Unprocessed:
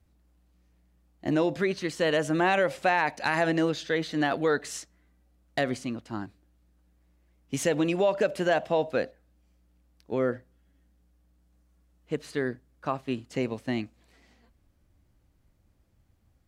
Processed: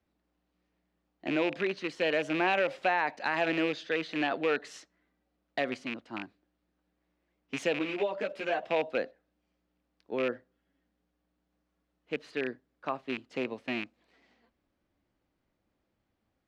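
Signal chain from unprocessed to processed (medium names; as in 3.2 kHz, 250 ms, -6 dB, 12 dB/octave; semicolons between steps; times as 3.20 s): rattle on loud lows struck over -34 dBFS, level -20 dBFS; three-band isolator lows -16 dB, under 200 Hz, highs -17 dB, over 5 kHz; 7.79–8.63 s: three-phase chorus; trim -3.5 dB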